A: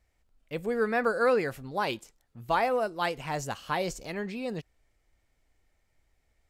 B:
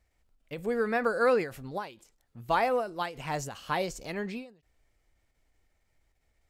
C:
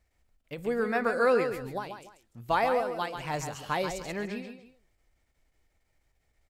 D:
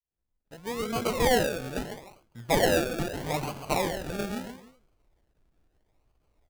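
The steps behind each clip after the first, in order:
ending taper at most 140 dB/s
tapped delay 0.137/0.294 s -7.5/-18.5 dB; ending taper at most 170 dB/s
opening faded in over 1.62 s; decimation with a swept rate 34×, swing 60% 0.77 Hz; gain +2.5 dB

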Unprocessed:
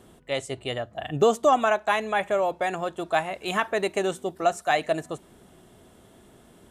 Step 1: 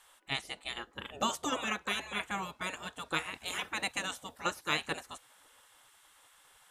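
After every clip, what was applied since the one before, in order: spectral gate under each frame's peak -15 dB weak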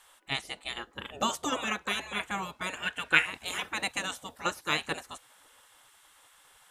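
spectral gain 2.77–3.26, 1400–3200 Hz +11 dB; gain +2.5 dB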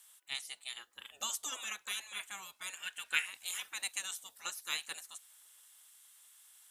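pre-emphasis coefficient 0.97; gain +1 dB

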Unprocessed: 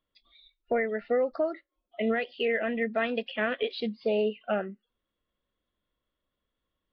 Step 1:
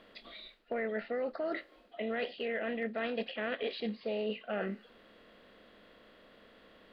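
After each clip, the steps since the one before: per-bin compression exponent 0.6; reverse; compressor 6:1, threshold -33 dBFS, peak gain reduction 12.5 dB; reverse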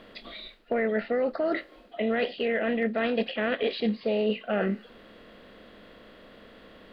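low shelf 320 Hz +5 dB; gain +7 dB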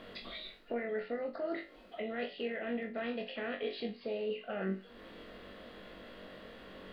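compressor 2:1, threshold -44 dBFS, peak gain reduction 12 dB; flutter echo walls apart 3.6 m, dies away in 0.26 s; gain -1.5 dB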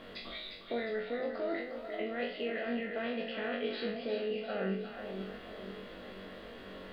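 spectral trails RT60 0.48 s; split-band echo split 790 Hz, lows 0.49 s, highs 0.356 s, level -7 dB

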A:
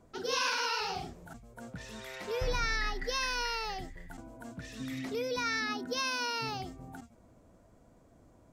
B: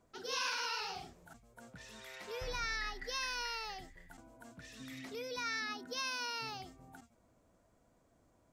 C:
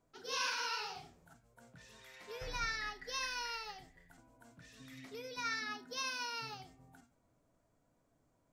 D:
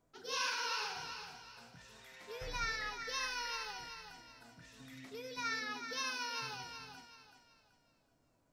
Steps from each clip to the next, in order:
tilt shelf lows -3.5 dB, about 670 Hz; gain -8 dB
reverb RT60 0.45 s, pre-delay 6 ms, DRR 7 dB; upward expander 1.5:1, over -47 dBFS
thinning echo 0.379 s, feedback 35%, high-pass 340 Hz, level -7.5 dB

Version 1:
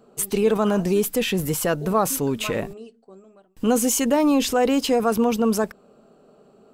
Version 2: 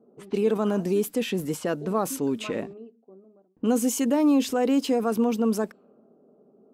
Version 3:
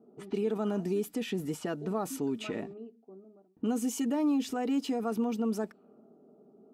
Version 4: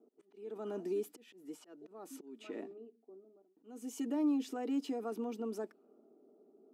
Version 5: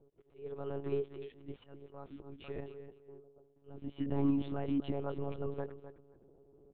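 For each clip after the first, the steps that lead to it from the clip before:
HPF 200 Hz 6 dB/oct; bell 270 Hz +8.5 dB 1.5 oct; low-pass opened by the level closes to 680 Hz, open at -15.5 dBFS; gain -7.5 dB
high shelf 9100 Hz -5.5 dB; compressor 1.5:1, threshold -38 dBFS, peak gain reduction 7.5 dB; notch comb 530 Hz
auto swell 0.419 s; ladder high-pass 260 Hz, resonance 45%
feedback echo 0.258 s, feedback 17%, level -12 dB; monotone LPC vocoder at 8 kHz 140 Hz; gain +1.5 dB

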